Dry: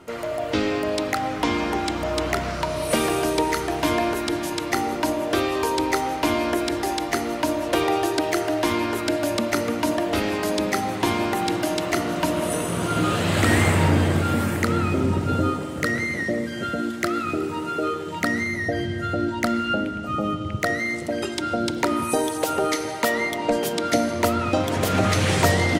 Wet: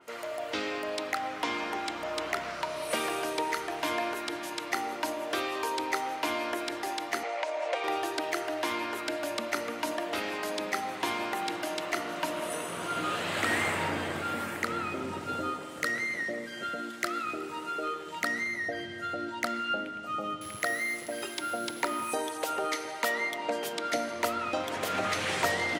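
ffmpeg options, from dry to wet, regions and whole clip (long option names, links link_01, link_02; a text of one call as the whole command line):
ffmpeg -i in.wav -filter_complex "[0:a]asettb=1/sr,asplit=3[link_01][link_02][link_03];[link_01]atrim=end=7.234[link_04];[link_02]atrim=start=7.23:end=7.84,asetpts=PTS-STARTPTS,afade=type=in:duration=0.004:curve=qsin,afade=type=out:start_time=0.606:duration=0.004:curve=qsin,acompressor=threshold=-23dB:ratio=5:attack=3.2:release=140:knee=1:detection=peak,highpass=frequency=430:width=0.5412,highpass=frequency=430:width=1.3066,equalizer=frequency=530:width_type=q:width=4:gain=10,equalizer=frequency=760:width_type=q:width=4:gain=9,equalizer=frequency=2200:width_type=q:width=4:gain=8,lowpass=frequency=8000:width=0.5412,lowpass=frequency=8000:width=1.3066[link_05];[link_03]atrim=start=7.836[link_06];[link_04][link_05]acrossfade=duration=0.004:curve1=hsin:curve2=qsin[link_07];[link_07][link_06]acrossfade=duration=0.004:curve1=qsin:curve2=hsin,asettb=1/sr,asplit=3[link_08][link_09][link_10];[link_08]atrim=end=20.414[link_11];[link_09]atrim=start=20.41:end=22.15,asetpts=PTS-STARTPTS,afade=type=in:duration=0.004:curve=qsin,afade=type=out:start_time=1.736:duration=0.004:curve=qsin,acrusher=bits=7:dc=4:mix=0:aa=0.000001,aeval=exprs='val(0)+0.0126*sin(2*PI*11000*n/s)':channel_layout=same[link_12];[link_10]atrim=start=22.146[link_13];[link_11][link_12]acrossfade=duration=0.004:curve1=hsin:curve2=qsin[link_14];[link_14][link_13]acrossfade=duration=0.004:curve1=qsin:curve2=hsin,highpass=frequency=890:poles=1,adynamicequalizer=threshold=0.00891:dfrequency=3700:dqfactor=0.7:tfrequency=3700:tqfactor=0.7:attack=5:release=100:ratio=0.375:range=3:mode=cutabove:tftype=highshelf,volume=-4dB" out.wav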